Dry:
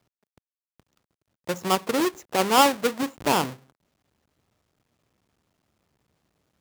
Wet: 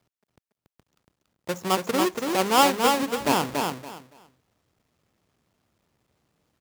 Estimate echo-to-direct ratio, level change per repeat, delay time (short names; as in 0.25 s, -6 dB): -4.0 dB, -13.5 dB, 0.283 s